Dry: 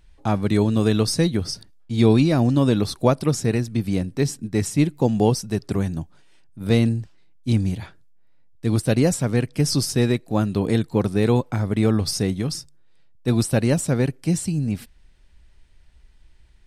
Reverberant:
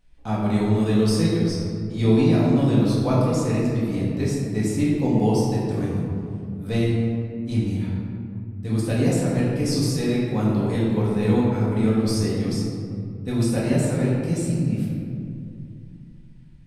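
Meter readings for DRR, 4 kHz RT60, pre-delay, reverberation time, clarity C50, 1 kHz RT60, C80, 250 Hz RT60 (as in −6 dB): −7.0 dB, 1.1 s, 4 ms, 2.4 s, −1.0 dB, 2.2 s, 1.0 dB, 3.4 s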